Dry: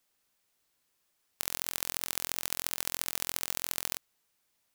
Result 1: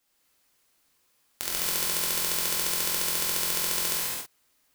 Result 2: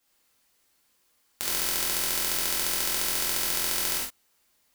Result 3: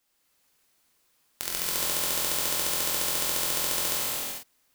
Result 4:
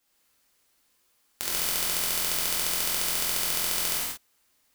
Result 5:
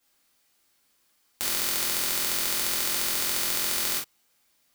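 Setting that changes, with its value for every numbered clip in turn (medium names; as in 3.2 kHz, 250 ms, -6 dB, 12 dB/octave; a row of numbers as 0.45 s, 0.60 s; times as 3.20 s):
gated-style reverb, gate: 300 ms, 140 ms, 470 ms, 210 ms, 80 ms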